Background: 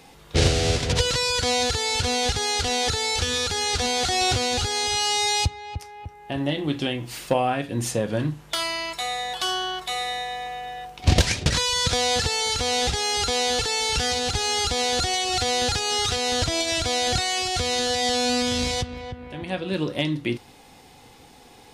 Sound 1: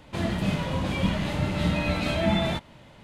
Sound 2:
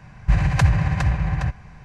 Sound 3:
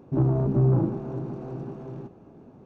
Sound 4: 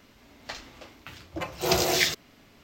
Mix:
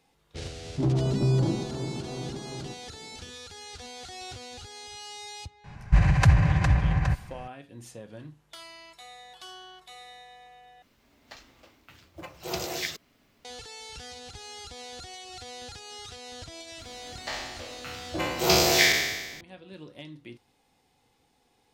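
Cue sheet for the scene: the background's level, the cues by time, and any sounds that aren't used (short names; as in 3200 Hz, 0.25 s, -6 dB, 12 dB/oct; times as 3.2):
background -19 dB
0.66 add 3 -5 dB + sample leveller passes 1
5.64 add 2 -1.5 dB
10.82 replace with 4 -9 dB + companded quantiser 6-bit
16.78 add 4 -0.5 dB + spectral trails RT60 1.25 s
not used: 1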